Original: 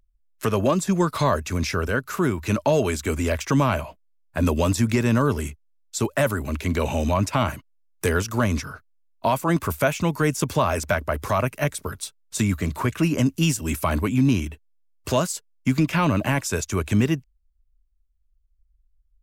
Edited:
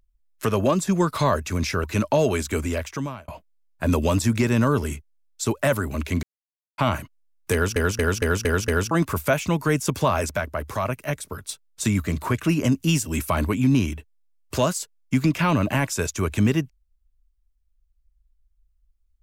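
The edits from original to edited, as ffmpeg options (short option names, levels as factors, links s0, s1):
-filter_complex "[0:a]asplit=13[s0][s1][s2][s3][s4][s5][s6][s7][s8][s9][s10][s11][s12];[s0]atrim=end=1.842[s13];[s1]atrim=start=2.378:end=3.82,asetpts=PTS-STARTPTS,afade=t=out:st=0.692:d=0.75[s14];[s2]atrim=start=3.82:end=6.77,asetpts=PTS-STARTPTS,afade=t=in:d=0.004:c=hsin,afade=t=out:st=2.946:d=0.004:c=hsin[s15];[s3]atrim=start=6.77:end=7.32,asetpts=PTS-STARTPTS,volume=0[s16];[s4]atrim=start=7.32:end=8.302,asetpts=PTS-STARTPTS,afade=t=in:d=0.004:c=hsin[s17];[s5]atrim=start=8.068:end=8.302[s18];[s6]atrim=start=8.068:end=8.302[s19];[s7]atrim=start=8.068:end=8.302[s20];[s8]atrim=start=8.068:end=8.302[s21];[s9]atrim=start=8.068:end=8.302[s22];[s10]atrim=start=9.448:end=10.852[s23];[s11]atrim=start=10.848:end=12.032,asetpts=PTS-STARTPTS,volume=0.668[s24];[s12]atrim=start=12.028[s25];[s14][s15][s16][s17]concat=n=4:v=0:a=1[s26];[s13][s26]acrossfade=d=0.004:c1=hsin:c2=hsin[s27];[s27][s18]acrossfade=d=0.004:c1=hsin:c2=hsin[s28];[s28][s19]acrossfade=d=0.004:c1=hsin:c2=hsin[s29];[s29][s20]acrossfade=d=0.004:c1=hsin:c2=hsin[s30];[s30][s21]acrossfade=d=0.004:c1=hsin:c2=hsin[s31];[s31][s22]acrossfade=d=0.004:c1=hsin:c2=hsin[s32];[s32][s23]acrossfade=d=0.004:c1=hsin:c2=hsin[s33];[s33][s24]acrossfade=d=0.004:c1=hsin:c2=hsin[s34];[s34][s25]acrossfade=d=0.004:c1=hsin:c2=hsin"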